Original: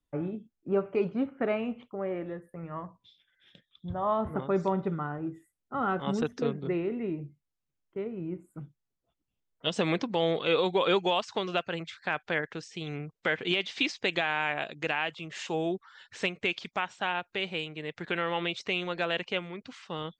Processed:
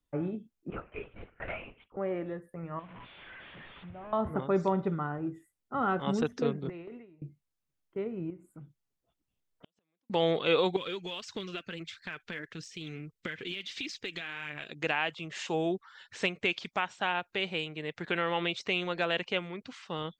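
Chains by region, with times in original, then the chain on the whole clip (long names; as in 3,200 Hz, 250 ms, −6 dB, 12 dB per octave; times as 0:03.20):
0:00.70–0:01.97: resonant band-pass 2,200 Hz, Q 1.1 + linear-prediction vocoder at 8 kHz whisper
0:02.79–0:04.13: linear delta modulator 16 kbit/s, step −41.5 dBFS + downward compressor 3 to 1, threshold −46 dBFS
0:06.69–0:07.22: parametric band 260 Hz −5.5 dB 1.5 octaves + noise gate with hold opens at −26 dBFS, closes at −30 dBFS + downward compressor 4 to 1, threshold −42 dBFS
0:08.30–0:10.10: downward compressor 2 to 1, threshold −49 dBFS + gate with flip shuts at −35 dBFS, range −42 dB
0:10.76–0:14.71: parametric band 770 Hz −15 dB 1.2 octaves + downward compressor 3 to 1, threshold −36 dBFS + phase shifter 1.6 Hz, delay 4.7 ms, feedback 38%
whole clip: no processing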